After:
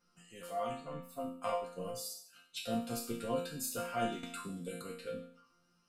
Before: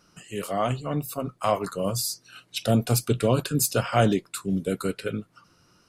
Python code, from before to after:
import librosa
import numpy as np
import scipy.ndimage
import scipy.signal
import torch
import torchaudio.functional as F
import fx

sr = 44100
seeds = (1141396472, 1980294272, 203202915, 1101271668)

y = fx.transient(x, sr, attack_db=4, sustain_db=-10, at=(0.82, 2.6))
y = fx.resonator_bank(y, sr, root=53, chord='sus4', decay_s=0.56)
y = fx.band_squash(y, sr, depth_pct=100, at=(4.23, 4.82))
y = F.gain(torch.from_numpy(y), 6.0).numpy()